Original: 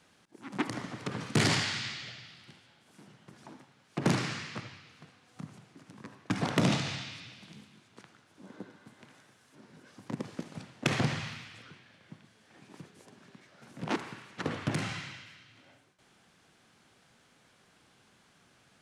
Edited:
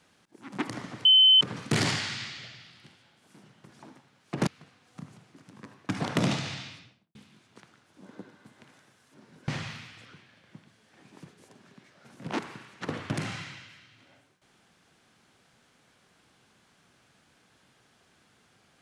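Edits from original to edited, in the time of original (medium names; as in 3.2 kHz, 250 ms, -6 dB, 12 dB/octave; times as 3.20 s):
1.05 s: add tone 3.06 kHz -14 dBFS 0.36 s
4.11–4.88 s: delete
7.05–7.56 s: studio fade out
9.89–11.05 s: delete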